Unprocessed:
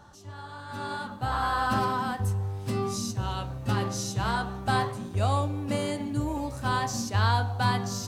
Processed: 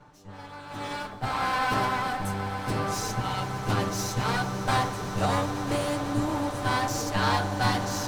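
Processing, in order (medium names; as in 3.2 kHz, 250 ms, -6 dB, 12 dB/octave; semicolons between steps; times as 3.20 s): comb filter that takes the minimum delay 6.7 ms; echo with a slow build-up 124 ms, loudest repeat 8, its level -17 dB; tape noise reduction on one side only decoder only; trim +1.5 dB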